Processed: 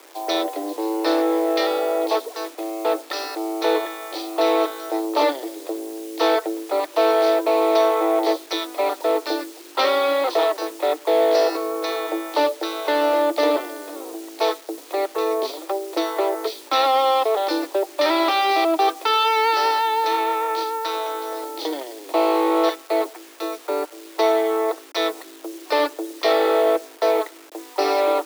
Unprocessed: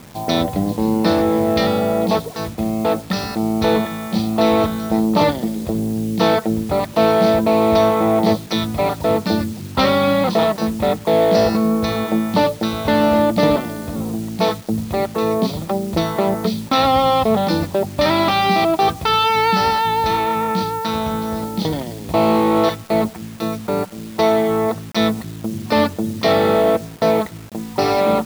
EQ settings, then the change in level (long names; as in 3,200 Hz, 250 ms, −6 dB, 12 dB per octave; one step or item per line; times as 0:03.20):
Butterworth high-pass 300 Hz 96 dB per octave
−2.5 dB